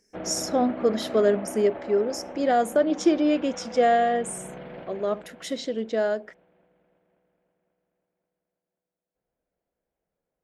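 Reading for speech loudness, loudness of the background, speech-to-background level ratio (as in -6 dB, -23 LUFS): -24.5 LUFS, -38.5 LUFS, 14.0 dB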